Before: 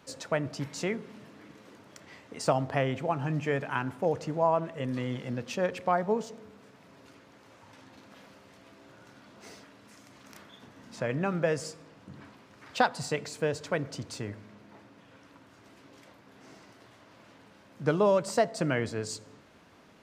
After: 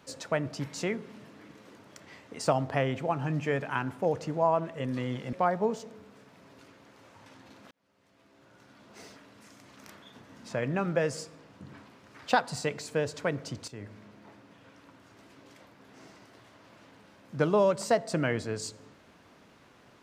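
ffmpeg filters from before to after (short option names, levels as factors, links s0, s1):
-filter_complex "[0:a]asplit=4[s0][s1][s2][s3];[s0]atrim=end=5.332[s4];[s1]atrim=start=5.798:end=8.18,asetpts=PTS-STARTPTS,afade=t=out:st=2.378:d=0.004:c=hsin[s5];[s2]atrim=start=8.18:end=14.15,asetpts=PTS-STARTPTS,afade=t=in:d=1.38,afade=t=out:st=5.966:d=0.004:c=hsin:silence=0.223872[s6];[s3]atrim=start=14.15,asetpts=PTS-STARTPTS,afade=t=in:d=0.28:silence=0.223872[s7];[s5][s6][s7]concat=n=3:v=0:a=1[s8];[s4][s8]acrossfade=d=0.004:c1=hsin:c2=hsin"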